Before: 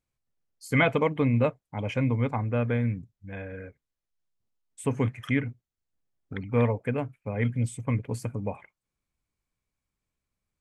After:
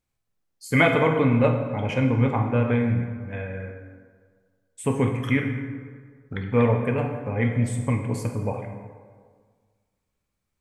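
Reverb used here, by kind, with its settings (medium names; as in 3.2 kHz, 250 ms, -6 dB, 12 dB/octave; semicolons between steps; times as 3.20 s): plate-style reverb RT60 1.7 s, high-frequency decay 0.55×, DRR 2 dB; trim +3 dB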